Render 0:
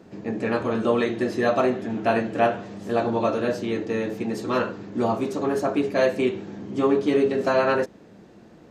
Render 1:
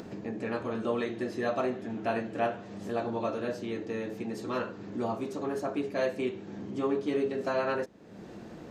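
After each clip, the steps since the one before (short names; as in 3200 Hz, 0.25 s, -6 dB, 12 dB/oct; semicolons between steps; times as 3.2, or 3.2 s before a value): upward compressor, threshold -23 dBFS; gain -9 dB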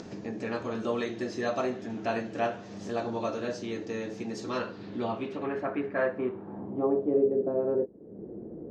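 low-pass sweep 6100 Hz -> 420 Hz, 4.43–7.48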